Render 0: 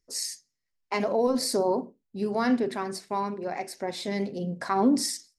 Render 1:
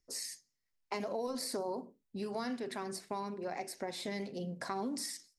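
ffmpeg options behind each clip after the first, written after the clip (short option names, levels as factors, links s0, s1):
-filter_complex "[0:a]acrossover=split=750|3400|8000[s0][s1][s2][s3];[s0]acompressor=threshold=0.0141:ratio=4[s4];[s1]acompressor=threshold=0.00794:ratio=4[s5];[s2]acompressor=threshold=0.00447:ratio=4[s6];[s3]acompressor=threshold=0.00794:ratio=4[s7];[s4][s5][s6][s7]amix=inputs=4:normalize=0,volume=0.794"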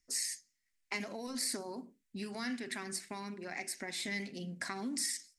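-af "equalizer=f=125:t=o:w=1:g=-5,equalizer=f=250:t=o:w=1:g=3,equalizer=f=500:t=o:w=1:g=-9,equalizer=f=1000:t=o:w=1:g=-6,equalizer=f=2000:t=o:w=1:g=9,equalizer=f=8000:t=o:w=1:g=7"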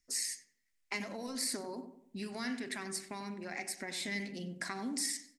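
-filter_complex "[0:a]asplit=2[s0][s1];[s1]adelay=94,lowpass=f=1400:p=1,volume=0.335,asplit=2[s2][s3];[s3]adelay=94,lowpass=f=1400:p=1,volume=0.44,asplit=2[s4][s5];[s5]adelay=94,lowpass=f=1400:p=1,volume=0.44,asplit=2[s6][s7];[s7]adelay=94,lowpass=f=1400:p=1,volume=0.44,asplit=2[s8][s9];[s9]adelay=94,lowpass=f=1400:p=1,volume=0.44[s10];[s0][s2][s4][s6][s8][s10]amix=inputs=6:normalize=0"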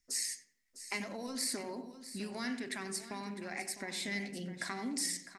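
-af "aecho=1:1:654:0.211"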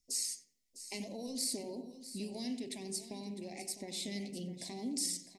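-af "asuperstop=centerf=1400:order=4:qfactor=0.63"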